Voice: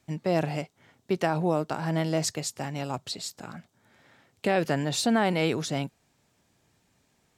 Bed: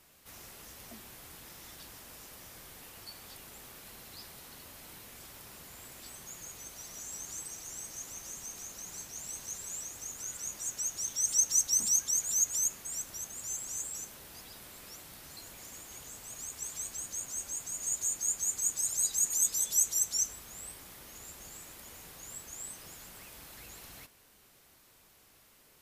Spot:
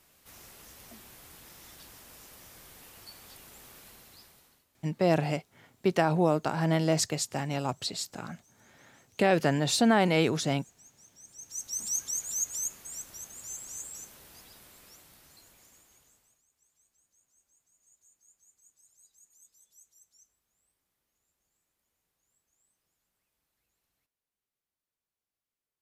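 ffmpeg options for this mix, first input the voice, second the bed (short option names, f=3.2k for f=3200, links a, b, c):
-filter_complex "[0:a]adelay=4750,volume=1dB[a];[1:a]volume=18.5dB,afade=t=out:st=3.79:d=0.87:silence=0.0841395,afade=t=in:st=11.38:d=0.62:silence=0.1,afade=t=out:st=14.26:d=2.16:silence=0.0354813[b];[a][b]amix=inputs=2:normalize=0"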